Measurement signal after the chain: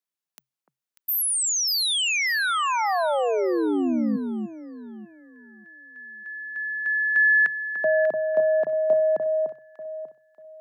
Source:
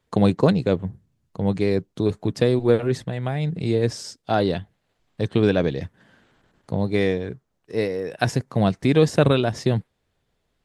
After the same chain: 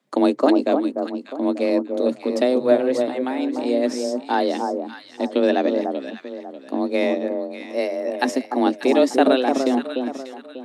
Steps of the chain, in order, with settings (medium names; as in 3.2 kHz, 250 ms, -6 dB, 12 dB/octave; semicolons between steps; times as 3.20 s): frequency shift +130 Hz; echo whose repeats swap between lows and highs 296 ms, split 1.2 kHz, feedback 54%, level -4.5 dB